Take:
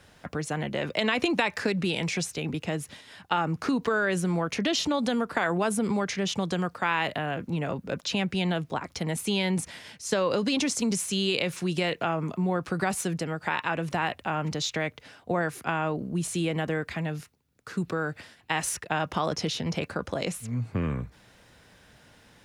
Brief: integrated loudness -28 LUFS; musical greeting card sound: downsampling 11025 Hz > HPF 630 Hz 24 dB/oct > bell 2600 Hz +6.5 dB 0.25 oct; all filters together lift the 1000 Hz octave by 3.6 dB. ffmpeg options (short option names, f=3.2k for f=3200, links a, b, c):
-af "equalizer=f=1k:t=o:g=5,aresample=11025,aresample=44100,highpass=f=630:w=0.5412,highpass=f=630:w=1.3066,equalizer=f=2.6k:t=o:w=0.25:g=6.5,volume=1dB"